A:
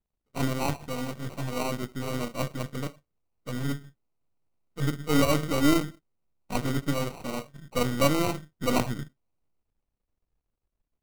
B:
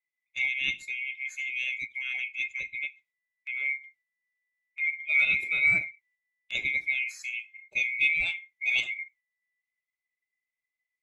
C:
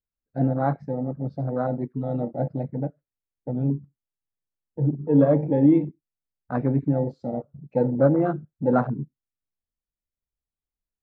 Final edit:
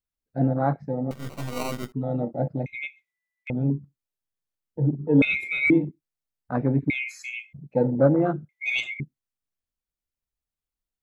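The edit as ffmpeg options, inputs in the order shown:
-filter_complex "[1:a]asplit=4[a][b][c][d];[2:a]asplit=6[e][f][g][h][i][j];[e]atrim=end=1.112[k];[0:a]atrim=start=1.108:end=1.922[l];[f]atrim=start=1.918:end=2.662[m];[a]atrim=start=2.658:end=3.502[n];[g]atrim=start=3.498:end=5.222[o];[b]atrim=start=5.218:end=5.702[p];[h]atrim=start=5.698:end=6.902[q];[c]atrim=start=6.898:end=7.532[r];[i]atrim=start=7.528:end=8.492[s];[d]atrim=start=8.488:end=9.002[t];[j]atrim=start=8.998[u];[k][l]acrossfade=d=0.004:c1=hsin:c2=hsin[v];[v][m]acrossfade=d=0.004:c1=hsin:c2=hsin[w];[w][n]acrossfade=d=0.004:c1=hsin:c2=hsin[x];[x][o]acrossfade=d=0.004:c1=hsin:c2=hsin[y];[y][p]acrossfade=d=0.004:c1=hsin:c2=hsin[z];[z][q]acrossfade=d=0.004:c1=hsin:c2=hsin[aa];[aa][r]acrossfade=d=0.004:c1=hsin:c2=hsin[ab];[ab][s]acrossfade=d=0.004:c1=hsin:c2=hsin[ac];[ac][t]acrossfade=d=0.004:c1=hsin:c2=hsin[ad];[ad][u]acrossfade=d=0.004:c1=hsin:c2=hsin"

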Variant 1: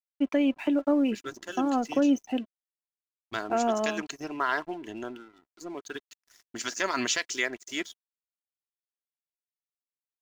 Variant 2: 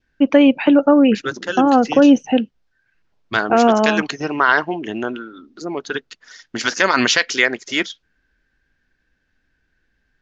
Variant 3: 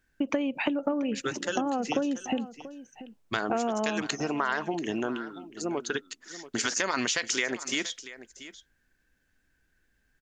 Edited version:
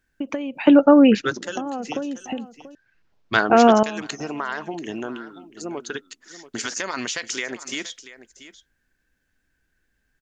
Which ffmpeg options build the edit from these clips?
-filter_complex "[1:a]asplit=2[a][b];[2:a]asplit=3[c][d][e];[c]atrim=end=0.672[f];[a]atrim=start=0.668:end=1.422[g];[d]atrim=start=1.418:end=2.752[h];[b]atrim=start=2.748:end=3.832[i];[e]atrim=start=3.828[j];[f][g]acrossfade=d=0.004:c1=hsin:c2=hsin[k];[k][h]acrossfade=d=0.004:c1=hsin:c2=hsin[l];[l][i]acrossfade=d=0.004:c1=hsin:c2=hsin[m];[m][j]acrossfade=d=0.004:c1=hsin:c2=hsin"

